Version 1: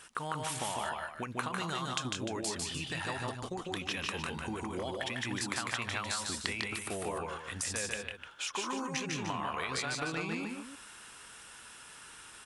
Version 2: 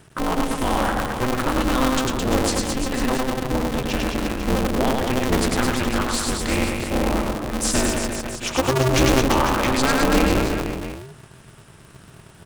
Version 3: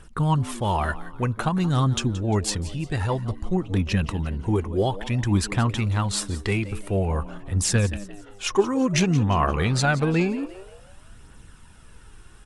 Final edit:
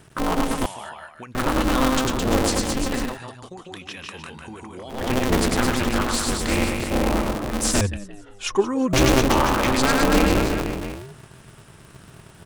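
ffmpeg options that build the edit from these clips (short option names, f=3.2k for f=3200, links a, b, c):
-filter_complex "[0:a]asplit=2[a][b];[1:a]asplit=4[c][d][e][f];[c]atrim=end=0.662[g];[a]atrim=start=0.658:end=1.352[h];[d]atrim=start=1.348:end=3.19[i];[b]atrim=start=2.95:end=5.12[j];[e]atrim=start=4.88:end=7.812[k];[2:a]atrim=start=7.808:end=8.932[l];[f]atrim=start=8.928[m];[g][h]acrossfade=d=0.004:c1=hsin:c2=hsin[n];[n][i]acrossfade=d=0.004:c1=hsin:c2=hsin[o];[o][j]acrossfade=d=0.24:c1=tri:c2=tri[p];[p][k]acrossfade=d=0.24:c1=tri:c2=tri[q];[q][l]acrossfade=d=0.004:c1=hsin:c2=hsin[r];[r][m]acrossfade=d=0.004:c1=hsin:c2=hsin"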